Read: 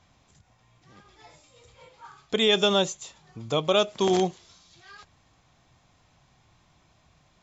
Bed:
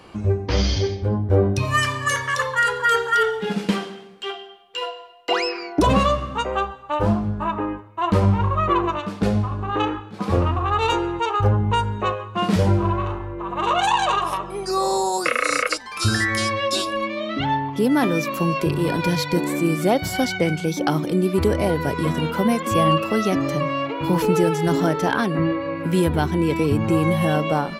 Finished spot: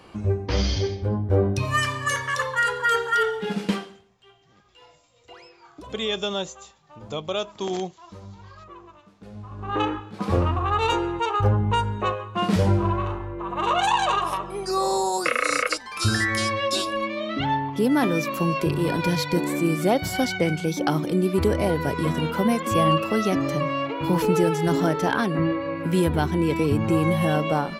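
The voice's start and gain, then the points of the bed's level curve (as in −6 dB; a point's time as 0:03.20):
3.60 s, −5.5 dB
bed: 0:03.73 −3 dB
0:04.23 −25 dB
0:09.24 −25 dB
0:09.74 −2 dB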